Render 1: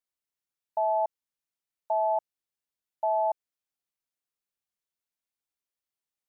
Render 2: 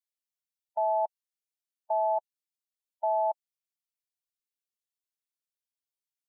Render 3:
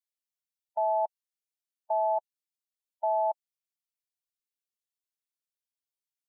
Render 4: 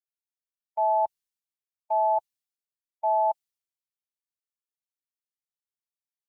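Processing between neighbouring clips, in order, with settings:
per-bin expansion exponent 1.5; in parallel at +1 dB: level quantiser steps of 14 dB; on the sum: gain -6 dB
nothing audible
bell 610 Hz -5 dB 0.28 oct; three-band expander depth 70%; gain +5 dB

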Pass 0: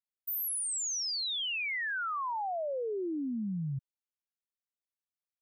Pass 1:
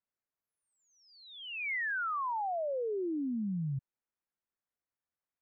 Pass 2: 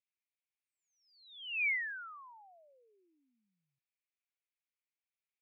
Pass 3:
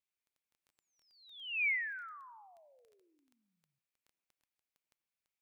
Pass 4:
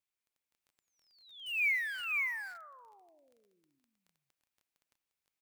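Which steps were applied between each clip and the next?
LPF 2000 Hz 24 dB/oct; limiter -35.5 dBFS, peak gain reduction 4.5 dB; gain +4.5 dB
ladder band-pass 2600 Hz, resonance 65%; gain +6.5 dB
crackle 10/s -53 dBFS; on a send at -18 dB: reverb, pre-delay 77 ms
in parallel at -10.5 dB: bit-crush 7-bit; on the sum: echo 0.518 s -3 dB

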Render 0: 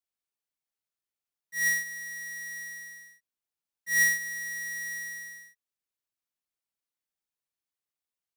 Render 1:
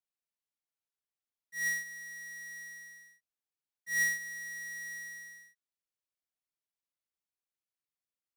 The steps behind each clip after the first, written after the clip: high shelf 10000 Hz -4.5 dB; gain -6 dB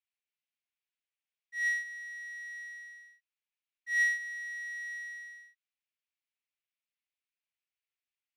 band-pass 2500 Hz, Q 2.4; gain +7 dB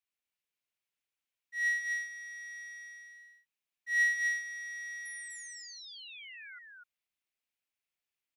painted sound fall, 5.05–6.59, 1400–11000 Hz -50 dBFS; on a send: echo 0.248 s -3 dB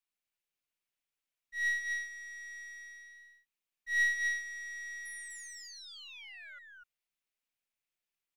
half-wave gain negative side -3 dB

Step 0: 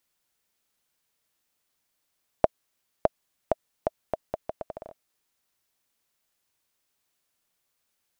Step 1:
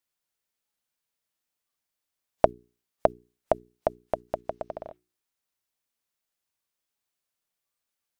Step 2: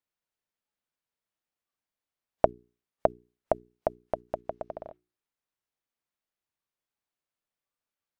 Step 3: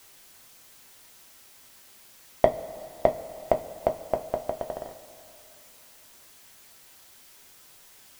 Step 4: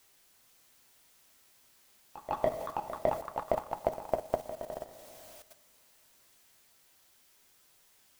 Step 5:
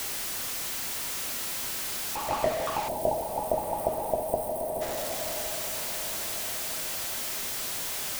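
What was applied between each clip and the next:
spectral noise reduction 11 dB; notches 60/120/180/240/300/360/420 Hz; gain +3 dB
high shelf 3800 Hz -11 dB; gain -2 dB
sample leveller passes 1; added noise white -55 dBFS; two-slope reverb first 0.2 s, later 2.8 s, from -18 dB, DRR 4 dB
level quantiser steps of 13 dB; echoes that change speed 0.48 s, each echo +5 st, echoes 2, each echo -6 dB; pre-echo 0.154 s -13.5 dB
zero-crossing step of -27.5 dBFS; spectral gain 2.88–4.81, 1000–8000 Hz -27 dB; diffused feedback echo 1.208 s, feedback 50%, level -14 dB

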